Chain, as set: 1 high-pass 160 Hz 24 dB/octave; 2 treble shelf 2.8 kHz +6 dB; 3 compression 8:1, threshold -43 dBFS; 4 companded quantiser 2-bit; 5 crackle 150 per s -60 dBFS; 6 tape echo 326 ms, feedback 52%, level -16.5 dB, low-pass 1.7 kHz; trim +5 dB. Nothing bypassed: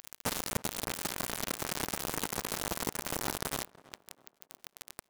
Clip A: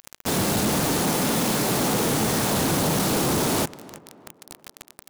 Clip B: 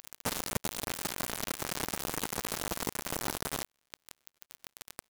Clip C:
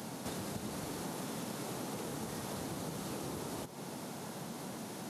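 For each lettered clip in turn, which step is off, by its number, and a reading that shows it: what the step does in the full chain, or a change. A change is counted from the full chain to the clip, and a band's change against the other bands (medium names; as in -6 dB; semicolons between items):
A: 3, crest factor change -13.0 dB; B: 6, echo-to-direct -36.5 dB to none; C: 4, crest factor change -5.5 dB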